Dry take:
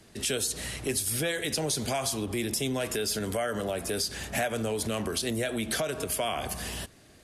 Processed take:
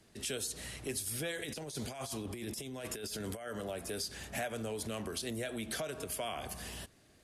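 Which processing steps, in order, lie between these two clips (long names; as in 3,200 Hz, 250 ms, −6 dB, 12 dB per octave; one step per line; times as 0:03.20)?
0:01.39–0:03.51: compressor whose output falls as the input rises −32 dBFS, ratio −0.5
level −8.5 dB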